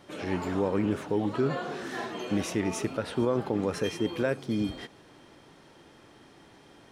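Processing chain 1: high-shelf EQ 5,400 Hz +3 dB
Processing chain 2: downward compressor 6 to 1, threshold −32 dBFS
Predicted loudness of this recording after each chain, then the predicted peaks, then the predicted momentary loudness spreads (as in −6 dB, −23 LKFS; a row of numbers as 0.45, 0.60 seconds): −30.0, −37.0 LKFS; −15.0, −19.5 dBFS; 7, 18 LU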